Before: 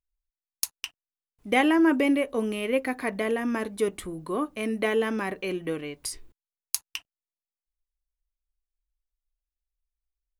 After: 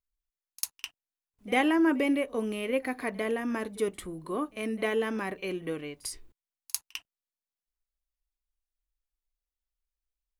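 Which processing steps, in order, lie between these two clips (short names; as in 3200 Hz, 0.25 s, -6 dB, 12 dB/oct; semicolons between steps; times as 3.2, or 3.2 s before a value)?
reverse echo 48 ms -21.5 dB; gain -3.5 dB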